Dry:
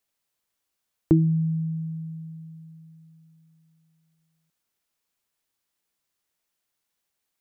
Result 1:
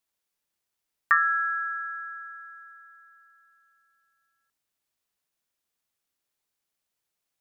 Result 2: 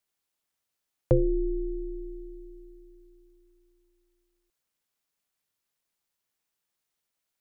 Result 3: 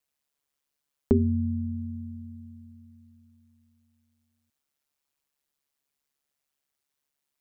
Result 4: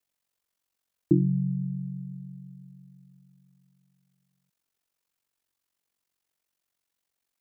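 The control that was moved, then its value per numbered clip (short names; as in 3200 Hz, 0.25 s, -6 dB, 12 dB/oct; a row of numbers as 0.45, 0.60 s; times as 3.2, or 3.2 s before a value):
ring modulator, frequency: 1500, 190, 71, 23 Hz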